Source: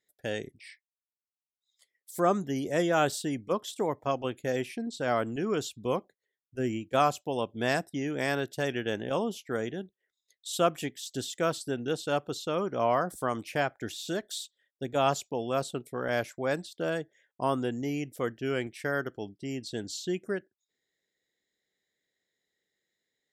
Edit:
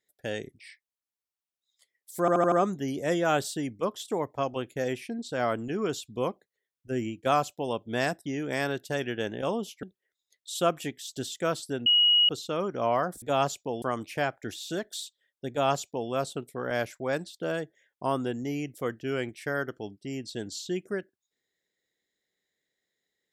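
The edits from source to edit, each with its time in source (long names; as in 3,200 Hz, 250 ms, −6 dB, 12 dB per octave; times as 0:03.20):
0:02.20: stutter 0.08 s, 5 plays
0:09.51–0:09.81: remove
0:11.84–0:12.27: beep over 2,900 Hz −17.5 dBFS
0:14.88–0:15.48: duplicate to 0:13.20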